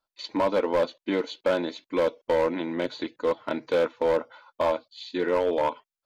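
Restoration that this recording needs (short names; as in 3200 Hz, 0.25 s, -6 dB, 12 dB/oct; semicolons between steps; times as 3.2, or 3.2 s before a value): clip repair -17.5 dBFS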